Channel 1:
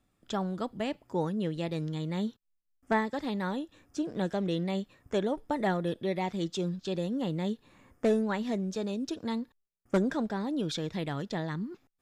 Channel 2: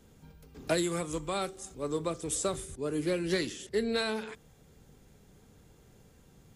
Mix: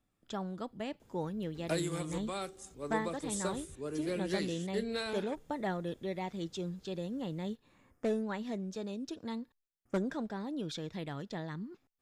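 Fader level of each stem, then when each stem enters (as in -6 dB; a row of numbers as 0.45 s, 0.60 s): -6.5 dB, -6.0 dB; 0.00 s, 1.00 s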